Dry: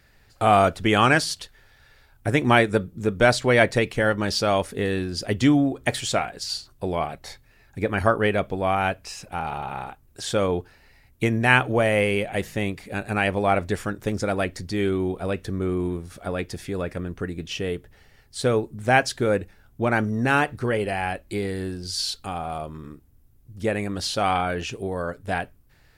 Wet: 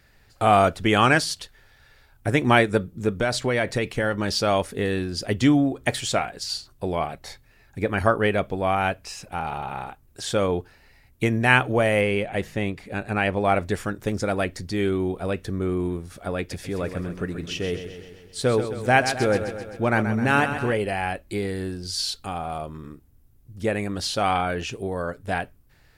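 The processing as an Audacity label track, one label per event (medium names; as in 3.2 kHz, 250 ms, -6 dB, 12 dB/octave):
3.150000	4.330000	compression, threshold -18 dBFS
12.010000	13.450000	treble shelf 5.7 kHz -8.5 dB
16.380000	20.730000	feedback delay 130 ms, feedback 59%, level -9.5 dB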